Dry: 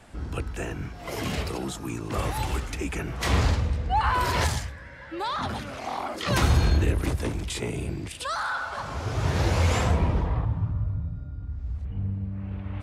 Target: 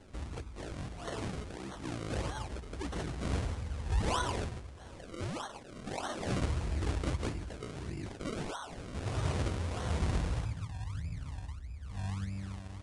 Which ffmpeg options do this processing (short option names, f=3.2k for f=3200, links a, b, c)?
-filter_complex "[0:a]asettb=1/sr,asplit=3[a][b][c];[a]atrim=end=5.024[d];[b]atrim=start=5.02:end=5.93,asetpts=PTS-STARTPTS,afade=t=in:d=0.004:c=qsin,afade=t=out:st=0.906:d=0.004:c=qsin,highpass=510[e];[c]atrim=start=5.926[f];[d][e]acrossfade=d=0.004:c1=hsin:c2=qsin[g];[g][f]acrossfade=d=0.004:c1=qsin:c2=hsin,asplit=2[h][i];[i]acompressor=threshold=-34dB:ratio=10,volume=-2dB[j];[h][j]amix=inputs=2:normalize=0,acrusher=bits=8:mix=0:aa=0.000001,tremolo=f=0.98:d=0.54,acrusher=samples=35:mix=1:aa=0.000001:lfo=1:lforange=35:lforate=1.6,volume=-8.5dB" -ar 22050 -c:a libvorbis -b:a 48k